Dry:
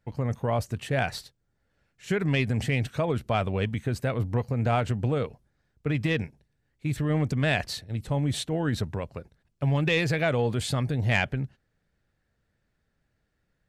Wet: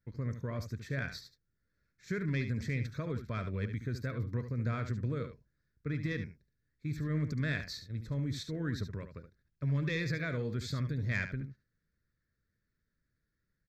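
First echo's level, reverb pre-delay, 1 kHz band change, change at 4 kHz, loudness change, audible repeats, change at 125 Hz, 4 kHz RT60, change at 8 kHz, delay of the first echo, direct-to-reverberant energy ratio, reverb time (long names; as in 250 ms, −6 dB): −9.5 dB, no reverb audible, −16.0 dB, −11.5 dB, −9.0 dB, 1, −7.5 dB, no reverb audible, −12.0 dB, 72 ms, no reverb audible, no reverb audible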